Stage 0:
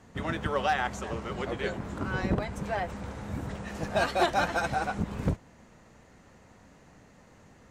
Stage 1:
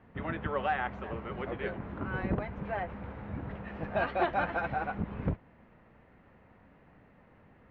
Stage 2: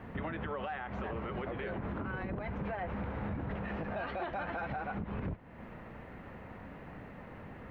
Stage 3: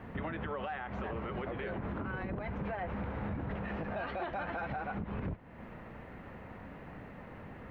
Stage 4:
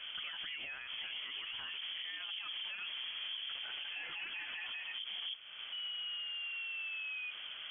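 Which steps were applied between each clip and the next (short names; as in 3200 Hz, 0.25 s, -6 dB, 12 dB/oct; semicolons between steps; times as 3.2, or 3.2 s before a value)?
LPF 2700 Hz 24 dB/oct; gain -3.5 dB
compressor 2.5:1, threshold -45 dBFS, peak gain reduction 14 dB; limiter -41 dBFS, peak gain reduction 10.5 dB; gain +11.5 dB
nothing audible
painted sound rise, 5.72–7.31, 340–840 Hz -39 dBFS; limiter -37 dBFS, peak gain reduction 7.5 dB; inverted band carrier 3300 Hz; gain +1 dB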